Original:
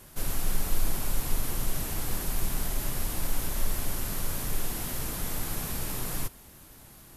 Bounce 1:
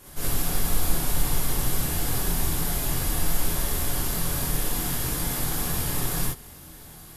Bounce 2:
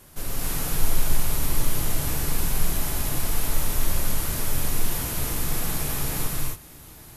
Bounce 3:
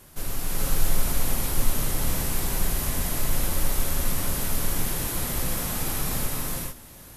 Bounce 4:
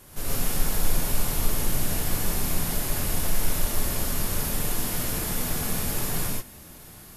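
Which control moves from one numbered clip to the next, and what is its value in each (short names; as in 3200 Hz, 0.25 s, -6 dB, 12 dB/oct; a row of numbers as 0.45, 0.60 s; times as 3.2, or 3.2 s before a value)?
non-linear reverb, gate: 80, 300, 470, 160 ms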